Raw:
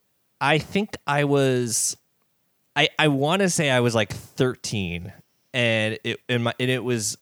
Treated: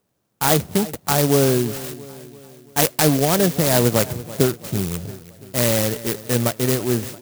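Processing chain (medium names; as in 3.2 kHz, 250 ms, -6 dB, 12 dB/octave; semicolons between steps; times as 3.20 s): distance through air 180 m; feedback delay 337 ms, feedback 53%, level -17 dB; sampling jitter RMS 0.13 ms; trim +4 dB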